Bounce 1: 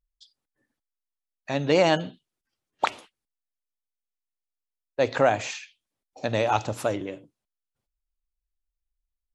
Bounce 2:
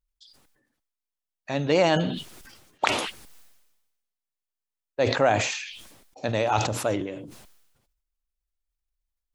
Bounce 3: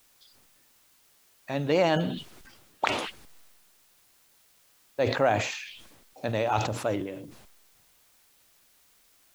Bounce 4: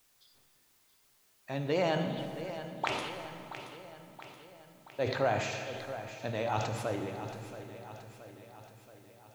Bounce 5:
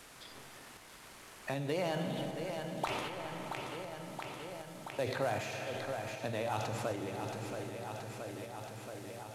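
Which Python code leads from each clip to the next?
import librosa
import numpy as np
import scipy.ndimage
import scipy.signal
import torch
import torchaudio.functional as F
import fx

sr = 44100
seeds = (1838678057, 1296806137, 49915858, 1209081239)

y1 = fx.sustainer(x, sr, db_per_s=51.0)
y1 = F.gain(torch.from_numpy(y1), -1.0).numpy()
y2 = fx.high_shelf(y1, sr, hz=5700.0, db=-8.5)
y2 = fx.quant_dither(y2, sr, seeds[0], bits=10, dither='triangular')
y2 = F.gain(torch.from_numpy(y2), -2.5).numpy()
y3 = fx.echo_feedback(y2, sr, ms=676, feedback_pct=56, wet_db=-12)
y3 = fx.rev_fdn(y3, sr, rt60_s=2.9, lf_ratio=1.0, hf_ratio=0.65, size_ms=45.0, drr_db=5.0)
y3 = F.gain(torch.from_numpy(y3), -6.5).numpy()
y4 = fx.cvsd(y3, sr, bps=64000)
y4 = fx.tremolo_shape(y4, sr, shape='saw_up', hz=1.3, depth_pct=30)
y4 = fx.band_squash(y4, sr, depth_pct=70)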